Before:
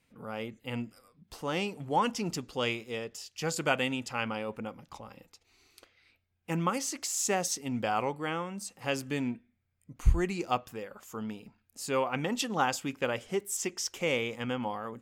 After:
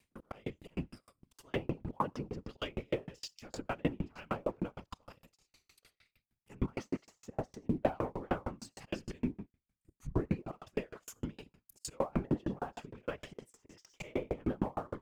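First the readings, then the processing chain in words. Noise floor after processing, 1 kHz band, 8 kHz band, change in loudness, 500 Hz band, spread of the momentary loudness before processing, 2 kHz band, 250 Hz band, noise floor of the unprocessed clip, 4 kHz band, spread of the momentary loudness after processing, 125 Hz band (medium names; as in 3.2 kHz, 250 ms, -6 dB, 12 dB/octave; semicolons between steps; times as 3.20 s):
under -85 dBFS, -9.5 dB, -18.5 dB, -7.0 dB, -5.5 dB, 13 LU, -13.0 dB, -3.5 dB, -74 dBFS, -13.5 dB, 15 LU, -3.5 dB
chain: slow attack 208 ms; gated-style reverb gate 130 ms rising, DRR 12 dB; low-pass that closes with the level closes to 1.1 kHz, closed at -31.5 dBFS; waveshaping leveller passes 1; treble shelf 4.4 kHz +6.5 dB; whisper effect; bass shelf 120 Hz +5.5 dB; sawtooth tremolo in dB decaying 6.5 Hz, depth 39 dB; trim +4 dB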